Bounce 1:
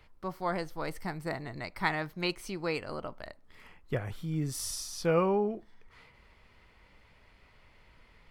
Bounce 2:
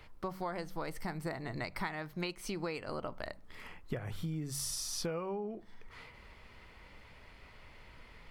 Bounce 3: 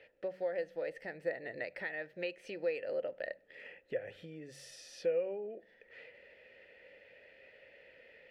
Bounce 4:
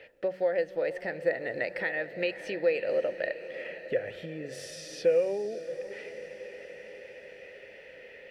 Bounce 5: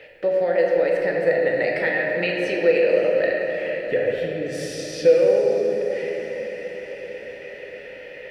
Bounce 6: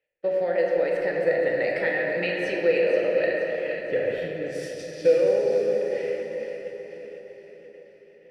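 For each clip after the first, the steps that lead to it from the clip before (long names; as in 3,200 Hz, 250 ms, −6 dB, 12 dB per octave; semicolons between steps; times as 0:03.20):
hum removal 47.03 Hz, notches 4; downward compressor 16 to 1, threshold −39 dBFS, peak gain reduction 19 dB; level +5 dB
formant filter e; level +10.5 dB
feedback delay with all-pass diffusion 580 ms, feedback 60%, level −13 dB; level +8.5 dB
rectangular room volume 160 cubic metres, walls hard, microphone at 0.53 metres; level +6 dB
downward expander −24 dBFS; echo with a time of its own for lows and highs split 500 Hz, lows 638 ms, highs 476 ms, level −10 dB; level −4 dB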